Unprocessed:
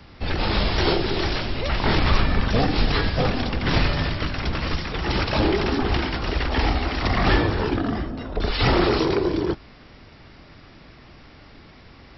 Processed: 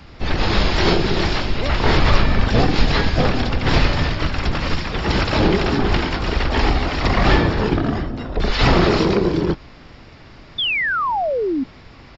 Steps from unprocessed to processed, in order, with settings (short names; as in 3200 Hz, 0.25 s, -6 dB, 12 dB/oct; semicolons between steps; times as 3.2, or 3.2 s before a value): harmoniser -12 st -5 dB, +5 st -14 dB; painted sound fall, 10.58–11.64, 250–3600 Hz -23 dBFS; gain +3 dB